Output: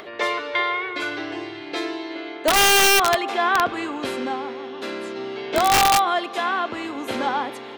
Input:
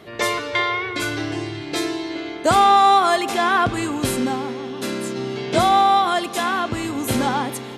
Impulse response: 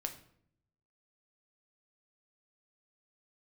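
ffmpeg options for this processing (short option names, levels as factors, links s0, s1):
-filter_complex "[0:a]acrossover=split=290 4400:gain=0.112 1 0.141[s0][s1][s2];[s0][s1][s2]amix=inputs=3:normalize=0,acompressor=mode=upward:threshold=0.0251:ratio=2.5,aeval=exprs='(mod(2.82*val(0)+1,2)-1)/2.82':c=same,volume=0.891"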